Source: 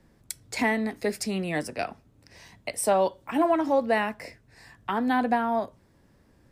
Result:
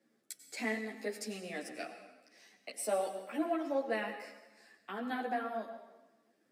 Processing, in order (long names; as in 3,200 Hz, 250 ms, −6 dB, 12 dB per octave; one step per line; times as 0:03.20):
high-pass filter 240 Hz 24 dB per octave
parametric band 940 Hz −13.5 dB 0.27 octaves
dense smooth reverb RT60 1.1 s, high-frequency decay 0.9×, pre-delay 80 ms, DRR 8.5 dB
string-ensemble chorus
level −7 dB